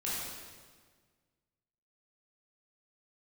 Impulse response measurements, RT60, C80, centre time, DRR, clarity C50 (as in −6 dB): 1.6 s, 0.0 dB, 110 ms, −8.5 dB, −2.5 dB